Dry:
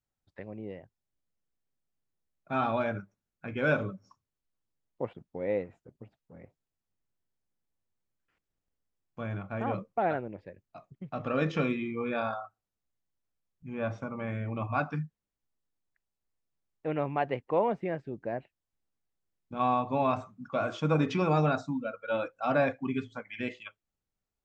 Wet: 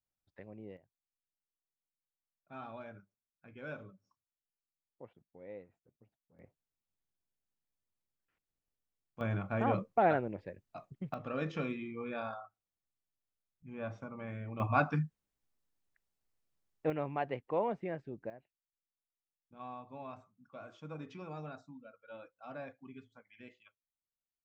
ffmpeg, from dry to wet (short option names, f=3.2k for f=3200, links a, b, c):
-af "asetnsamples=n=441:p=0,asendcmd='0.77 volume volume -17.5dB;6.39 volume volume -7dB;9.21 volume volume 1dB;11.14 volume volume -8dB;14.6 volume volume 1dB;16.9 volume volume -6dB;18.3 volume volume -19dB',volume=-8dB"